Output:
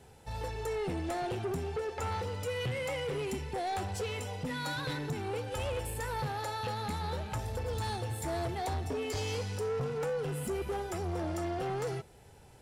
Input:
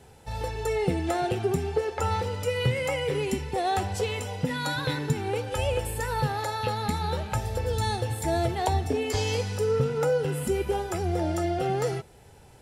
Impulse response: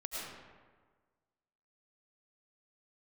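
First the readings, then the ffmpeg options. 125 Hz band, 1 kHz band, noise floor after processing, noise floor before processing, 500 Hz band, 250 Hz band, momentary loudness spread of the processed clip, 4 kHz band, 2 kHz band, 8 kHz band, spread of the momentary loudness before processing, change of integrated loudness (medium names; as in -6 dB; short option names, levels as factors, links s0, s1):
-8.0 dB, -7.5 dB, -56 dBFS, -52 dBFS, -8.0 dB, -8.0 dB, 2 LU, -7.0 dB, -6.5 dB, -7.0 dB, 4 LU, -7.5 dB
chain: -af "asoftclip=type=tanh:threshold=0.0501,volume=0.631"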